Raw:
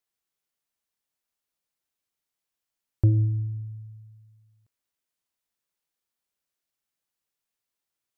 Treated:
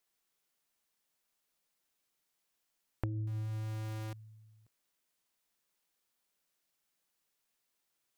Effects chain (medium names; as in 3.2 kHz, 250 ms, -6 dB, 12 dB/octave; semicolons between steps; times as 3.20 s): 3.27–4.13 s: jump at every zero crossing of -37 dBFS; peaking EQ 80 Hz -12.5 dB 0.6 oct; compression 5:1, threshold -41 dBFS, peak gain reduction 19.5 dB; trim +4.5 dB